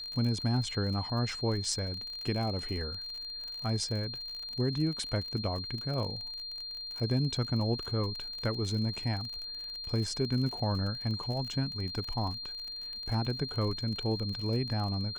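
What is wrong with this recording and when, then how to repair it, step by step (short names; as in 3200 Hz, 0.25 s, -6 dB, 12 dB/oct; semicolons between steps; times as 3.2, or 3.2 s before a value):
crackle 44/s -37 dBFS
tone 4200 Hz -38 dBFS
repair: de-click; notch 4200 Hz, Q 30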